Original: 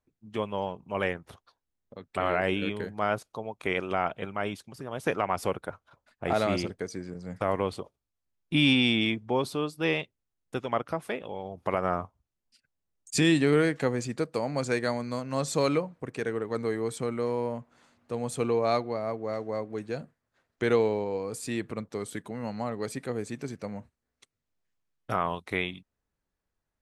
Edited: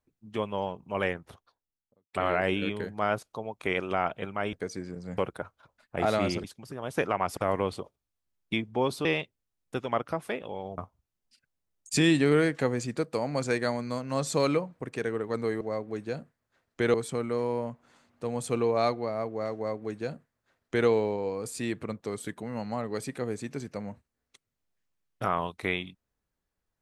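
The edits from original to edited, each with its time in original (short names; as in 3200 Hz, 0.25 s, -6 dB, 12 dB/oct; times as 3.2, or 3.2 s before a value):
1.14–2.13 studio fade out
4.53–5.46 swap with 6.72–7.37
8.53–9.07 cut
9.59–9.85 cut
11.58–11.99 cut
19.43–20.76 copy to 16.82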